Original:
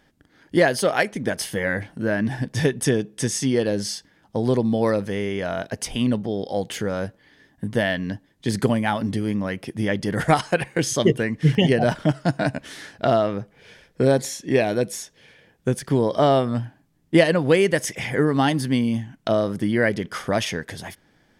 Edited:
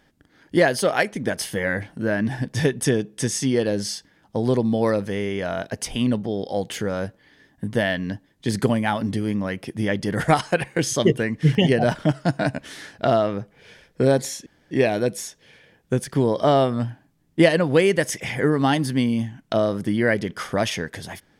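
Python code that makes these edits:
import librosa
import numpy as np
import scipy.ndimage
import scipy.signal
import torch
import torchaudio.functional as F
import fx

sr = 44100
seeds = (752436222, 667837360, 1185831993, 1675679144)

y = fx.edit(x, sr, fx.insert_room_tone(at_s=14.46, length_s=0.25), tone=tone)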